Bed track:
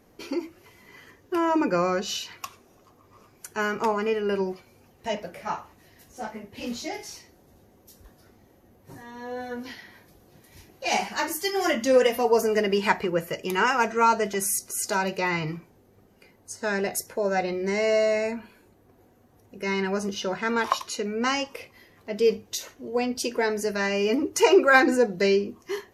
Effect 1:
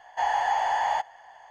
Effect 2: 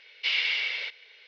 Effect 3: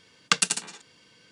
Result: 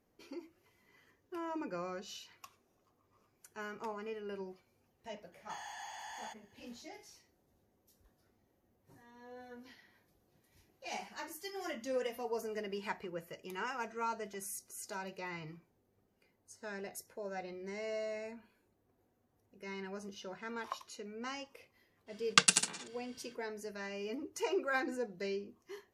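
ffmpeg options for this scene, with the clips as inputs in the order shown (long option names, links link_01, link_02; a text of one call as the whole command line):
ffmpeg -i bed.wav -i cue0.wav -i cue1.wav -i cue2.wav -filter_complex "[0:a]volume=-17.5dB[link_01];[1:a]aderivative,atrim=end=1.5,asetpts=PTS-STARTPTS,volume=-5.5dB,afade=type=in:duration=0.004:curve=hsin,afade=type=out:start_time=1.496:duration=0.004:curve=hsin,adelay=5320[link_02];[3:a]atrim=end=1.31,asetpts=PTS-STARTPTS,volume=-3dB,afade=type=in:duration=0.05,afade=type=out:start_time=1.26:duration=0.05,adelay=22060[link_03];[link_01][link_02][link_03]amix=inputs=3:normalize=0" out.wav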